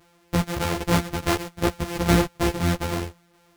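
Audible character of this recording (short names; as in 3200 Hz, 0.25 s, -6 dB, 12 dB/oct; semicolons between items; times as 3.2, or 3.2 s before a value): a buzz of ramps at a fixed pitch in blocks of 256 samples; tremolo saw down 2.4 Hz, depth 50%; a shimmering, thickened sound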